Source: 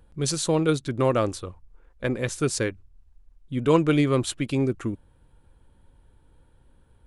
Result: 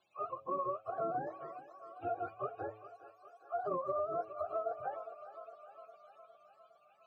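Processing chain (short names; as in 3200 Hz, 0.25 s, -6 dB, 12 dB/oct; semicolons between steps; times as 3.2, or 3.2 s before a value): spectrum mirrored in octaves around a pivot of 420 Hz; vowel filter a; low shelf 150 Hz +10 dB; on a send: thinning echo 0.408 s, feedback 70%, high-pass 390 Hz, level -15 dB; on the sum: compressor, threshold -34 dBFS, peak gain reduction 8 dB; bell 1900 Hz +2 dB; de-hum 108.3 Hz, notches 9; gain +1.5 dB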